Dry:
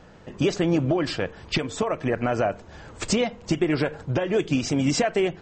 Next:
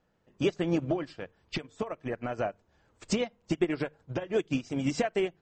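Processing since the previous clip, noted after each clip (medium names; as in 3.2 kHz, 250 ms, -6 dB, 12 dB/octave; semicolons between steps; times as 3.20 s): hum notches 50/100/150 Hz; upward expansion 2.5:1, over -32 dBFS; trim -2.5 dB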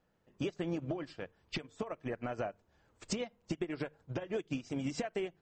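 compression 10:1, threshold -29 dBFS, peak gain reduction 9.5 dB; trim -3 dB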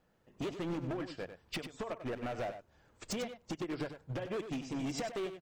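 hard clipper -37 dBFS, distortion -8 dB; on a send: delay 96 ms -10 dB; on the sum: trim +3 dB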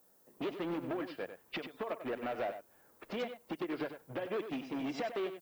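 three-band isolator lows -17 dB, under 210 Hz, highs -23 dB, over 4.3 kHz; level-controlled noise filter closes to 1.4 kHz, open at -35 dBFS; added noise violet -70 dBFS; trim +2 dB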